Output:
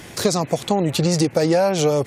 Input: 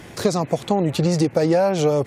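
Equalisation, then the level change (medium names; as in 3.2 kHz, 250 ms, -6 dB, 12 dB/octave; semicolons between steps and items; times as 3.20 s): treble shelf 2.7 kHz +7.5 dB; 0.0 dB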